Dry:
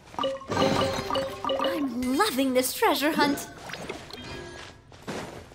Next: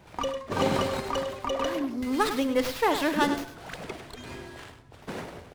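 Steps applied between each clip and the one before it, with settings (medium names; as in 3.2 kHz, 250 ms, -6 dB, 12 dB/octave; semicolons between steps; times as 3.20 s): delay 102 ms -10 dB; sliding maximum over 5 samples; trim -2 dB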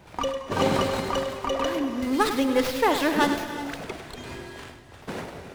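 gated-style reverb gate 400 ms rising, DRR 10 dB; trim +2.5 dB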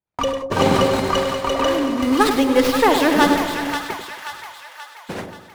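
gate -33 dBFS, range -48 dB; on a send: two-band feedback delay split 860 Hz, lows 91 ms, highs 531 ms, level -7 dB; on the sum: trim +6 dB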